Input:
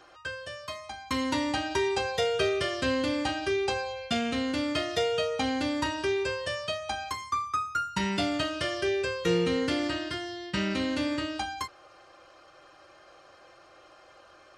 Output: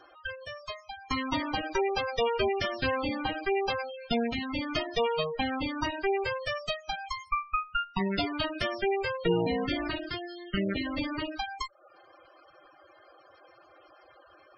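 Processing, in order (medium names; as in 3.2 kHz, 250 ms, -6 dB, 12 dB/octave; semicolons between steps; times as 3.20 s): Chebyshev shaper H 6 -13 dB, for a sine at -14 dBFS; reverb removal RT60 0.56 s; spectral gate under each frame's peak -15 dB strong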